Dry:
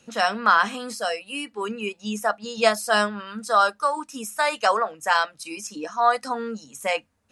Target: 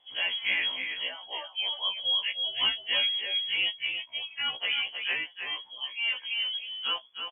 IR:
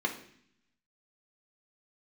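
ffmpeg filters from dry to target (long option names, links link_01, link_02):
-af "equalizer=frequency=1400:width=0.43:gain=-11,asoftclip=type=tanh:threshold=-17.5dB,aecho=1:1:317:0.473,lowpass=frequency=3000:width_type=q:width=0.5098,lowpass=frequency=3000:width_type=q:width=0.6013,lowpass=frequency=3000:width_type=q:width=0.9,lowpass=frequency=3000:width_type=q:width=2.563,afreqshift=-3500,afftfilt=real='re*1.73*eq(mod(b,3),0)':imag='im*1.73*eq(mod(b,3),0)':win_size=2048:overlap=0.75,volume=2.5dB"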